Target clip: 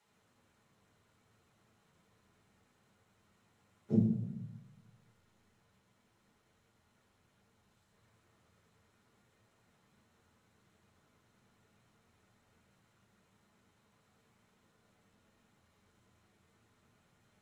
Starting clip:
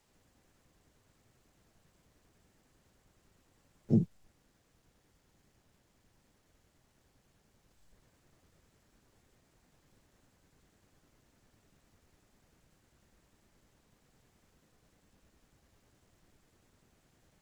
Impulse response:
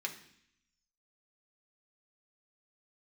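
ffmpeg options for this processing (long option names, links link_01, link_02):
-filter_complex "[0:a]equalizer=frequency=69:width=4.4:gain=-7.5[link_01];[1:a]atrim=start_sample=2205,asetrate=24696,aresample=44100[link_02];[link_01][link_02]afir=irnorm=-1:irlink=0,volume=-5dB"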